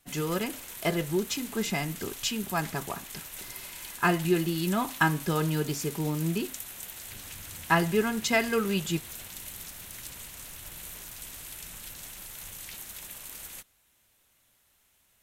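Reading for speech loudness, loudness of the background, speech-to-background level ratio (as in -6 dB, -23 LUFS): -29.0 LUFS, -40.0 LUFS, 11.0 dB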